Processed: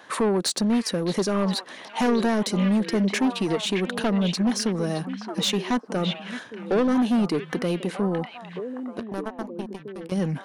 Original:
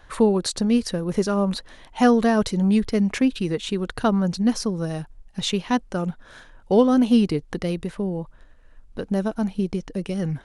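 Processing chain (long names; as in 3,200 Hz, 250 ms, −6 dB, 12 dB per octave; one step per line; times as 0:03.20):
high-pass filter 180 Hz 24 dB per octave
notch filter 1,400 Hz, Q 23
in parallel at +1 dB: downward compressor, threshold −28 dBFS, peak gain reduction 16 dB
0:08.99–0:10.12: on the sum: power curve on the samples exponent 3
soft clipping −17.5 dBFS, distortion −9 dB
on a send: echo through a band-pass that steps 619 ms, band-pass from 2,500 Hz, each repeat −1.4 octaves, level −3 dB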